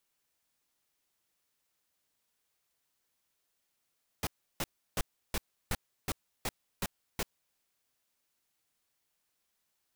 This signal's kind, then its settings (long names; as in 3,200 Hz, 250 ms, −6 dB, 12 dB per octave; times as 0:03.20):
noise bursts pink, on 0.04 s, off 0.33 s, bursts 9, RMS −32 dBFS